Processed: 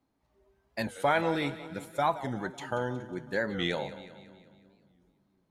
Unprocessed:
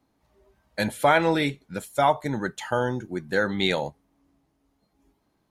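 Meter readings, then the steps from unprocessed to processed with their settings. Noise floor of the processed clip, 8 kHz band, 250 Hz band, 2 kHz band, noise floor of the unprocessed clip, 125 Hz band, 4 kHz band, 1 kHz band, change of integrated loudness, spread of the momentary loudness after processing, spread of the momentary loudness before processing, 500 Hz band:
-75 dBFS, -9.5 dB, -6.5 dB, -7.0 dB, -72 dBFS, -6.5 dB, -7.5 dB, -6.5 dB, -7.0 dB, 13 LU, 11 LU, -7.0 dB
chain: high shelf 5900 Hz -4.5 dB; resonator 130 Hz, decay 1.8 s, mix 50%; split-band echo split 300 Hz, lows 0.341 s, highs 0.183 s, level -14.5 dB; record warp 45 rpm, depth 160 cents; gain -1 dB

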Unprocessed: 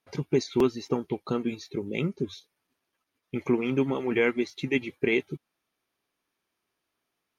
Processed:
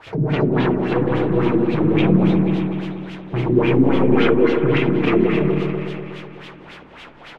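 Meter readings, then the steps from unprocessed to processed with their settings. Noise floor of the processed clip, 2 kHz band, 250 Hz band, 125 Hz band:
-41 dBFS, +6.5 dB, +12.5 dB, +16.0 dB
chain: bin magnitudes rounded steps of 15 dB; bell 110 Hz +8.5 dB 2.4 oct; comb 6.3 ms, depth 68%; transient shaper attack +6 dB, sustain 0 dB; in parallel at -4 dB: requantised 6-bit, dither triangular; on the sum: hard clip -20.5 dBFS, distortion -2 dB; spring tank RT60 1.2 s, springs 32/48 ms, chirp 55 ms, DRR -2.5 dB; LFO low-pass sine 3.6 Hz 240–3200 Hz; on a send: repeats that get brighter 0.123 s, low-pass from 400 Hz, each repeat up 1 oct, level -3 dB

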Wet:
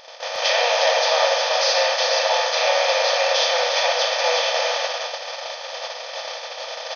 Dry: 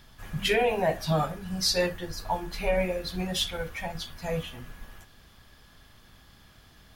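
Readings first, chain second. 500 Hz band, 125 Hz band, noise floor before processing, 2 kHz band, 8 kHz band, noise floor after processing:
+9.5 dB, under -35 dB, -56 dBFS, +12.5 dB, +11.0 dB, -34 dBFS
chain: per-bin compression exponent 0.2; brick-wall FIR band-pass 480–6600 Hz; upward compressor, threshold -30 dBFS; echo 0.358 s -4.5 dB; gate -21 dBFS, range -23 dB

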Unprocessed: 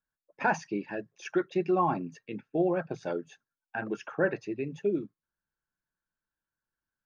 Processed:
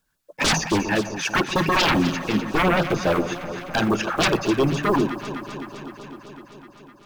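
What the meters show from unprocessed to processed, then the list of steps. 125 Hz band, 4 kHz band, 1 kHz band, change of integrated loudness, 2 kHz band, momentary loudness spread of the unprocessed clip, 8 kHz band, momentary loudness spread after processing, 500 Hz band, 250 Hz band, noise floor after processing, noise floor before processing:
+13.5 dB, +27.0 dB, +9.5 dB, +9.5 dB, +12.0 dB, 12 LU, n/a, 15 LU, +6.5 dB, +10.5 dB, -53 dBFS, under -85 dBFS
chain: block floating point 7-bit; sine folder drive 15 dB, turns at -14.5 dBFS; echo with dull and thin repeats by turns 0.127 s, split 1100 Hz, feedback 86%, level -10.5 dB; LFO notch sine 7.2 Hz 370–2200 Hz

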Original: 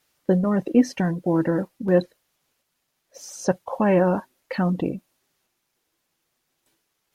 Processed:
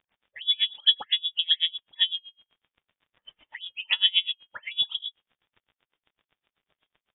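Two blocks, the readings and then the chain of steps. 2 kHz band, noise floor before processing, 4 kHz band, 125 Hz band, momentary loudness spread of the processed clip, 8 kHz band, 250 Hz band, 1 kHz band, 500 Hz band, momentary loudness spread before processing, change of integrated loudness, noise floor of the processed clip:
0.0 dB, -76 dBFS, +25.5 dB, under -40 dB, 14 LU, under -40 dB, under -40 dB, -18.5 dB, under -35 dB, 13 LU, -1.5 dB, under -85 dBFS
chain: de-hum 356.6 Hz, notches 3; dispersion lows, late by 0.131 s, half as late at 1600 Hz; crackle 70/s -43 dBFS; inverted band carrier 3600 Hz; dB-linear tremolo 7.9 Hz, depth 31 dB; gain +1.5 dB

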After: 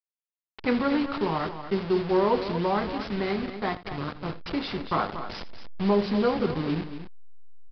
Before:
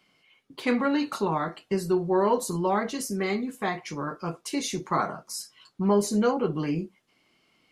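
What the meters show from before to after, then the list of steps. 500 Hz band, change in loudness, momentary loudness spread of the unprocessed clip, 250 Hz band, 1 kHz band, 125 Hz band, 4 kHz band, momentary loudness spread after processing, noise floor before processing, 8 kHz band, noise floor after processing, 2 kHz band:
0.0 dB, 0.0 dB, 11 LU, 0.0 dB, -0.5 dB, +0.5 dB, +1.0 dB, 12 LU, -68 dBFS, under -25 dB, under -85 dBFS, 0.0 dB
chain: level-crossing sampler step -28.5 dBFS; tapped delay 82/235 ms -16.5/-10.5 dB; downsampling 11025 Hz

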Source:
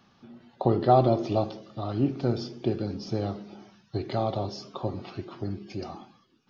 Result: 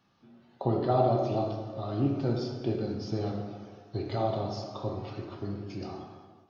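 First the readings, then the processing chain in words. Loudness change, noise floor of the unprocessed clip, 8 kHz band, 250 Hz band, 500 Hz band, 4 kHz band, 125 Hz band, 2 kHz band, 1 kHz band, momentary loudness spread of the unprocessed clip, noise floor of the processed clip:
-3.0 dB, -63 dBFS, n/a, -2.5 dB, -3.0 dB, -3.0 dB, -2.0 dB, -2.5 dB, -4.5 dB, 17 LU, -61 dBFS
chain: plate-style reverb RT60 1.6 s, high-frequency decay 0.55×, DRR 1 dB; AGC gain up to 5 dB; flange 1.9 Hz, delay 6.4 ms, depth 2 ms, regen -74%; gain -5 dB

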